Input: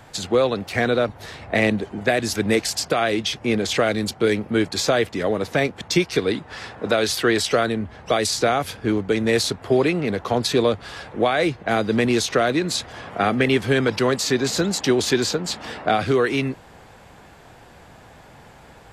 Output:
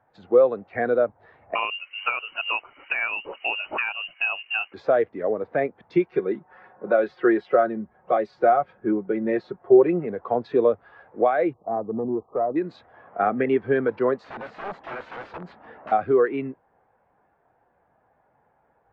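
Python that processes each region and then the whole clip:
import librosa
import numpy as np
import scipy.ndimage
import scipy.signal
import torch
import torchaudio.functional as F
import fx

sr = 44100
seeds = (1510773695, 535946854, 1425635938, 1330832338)

y = fx.chain(x, sr, fx.freq_invert(carrier_hz=3000),
    fx.band_squash(depth_pct=100), at=(1.55, 4.74))
y = fx.chain(y, sr, fx.high_shelf(hz=3500.0, db=-6.0),
    fx.comb(ms=5.5, depth=0.5), at=(6.08, 10.06))
y = fx.chain(y, sr, fx.brickwall_lowpass(high_hz=1300.0),
    fx.tube_stage(drive_db=15.0, bias=0.3), at=(11.53, 12.56))
y = fx.chain(y, sr, fx.low_shelf(hz=130.0, db=5.5),
    fx.overflow_wrap(gain_db=19.0), at=(14.24, 15.92))
y = scipy.signal.sosfilt(scipy.signal.butter(2, 1700.0, 'lowpass', fs=sr, output='sos'), y)
y = fx.low_shelf(y, sr, hz=260.0, db=-11.5)
y = fx.spectral_expand(y, sr, expansion=1.5)
y = F.gain(torch.from_numpy(y), 3.5).numpy()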